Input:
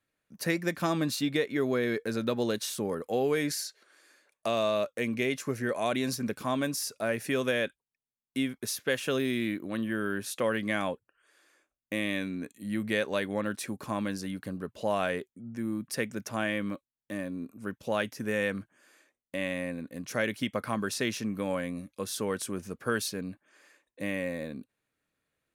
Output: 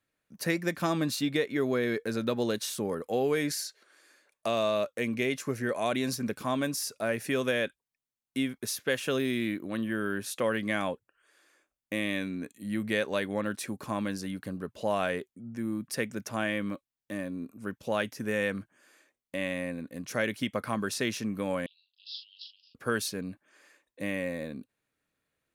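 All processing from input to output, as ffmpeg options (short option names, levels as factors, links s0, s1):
-filter_complex "[0:a]asettb=1/sr,asplit=3[s0][s1][s2];[s0]atrim=end=21.664[s3];[s1]atrim=start=21.66:end=22.75,asetpts=PTS-STARTPTS,afade=t=in:d=0.004:c=qsin,afade=t=out:st=1.086:d=0.004:c=qsin,asuperpass=centerf=3800:order=20:qfactor=1.5,asplit=2[s4][s5];[s5]adelay=41,volume=0.501[s6];[s4][s6]amix=inputs=2:normalize=0,atrim=end_sample=48069[s7];[s2]atrim=start=22.746[s8];[s3][s7]acrossfade=d=0.004:c1=hsin:c2=qsin[s9];[s9][s8]acrossfade=d=0.004:c1=qsin:c2=hsin"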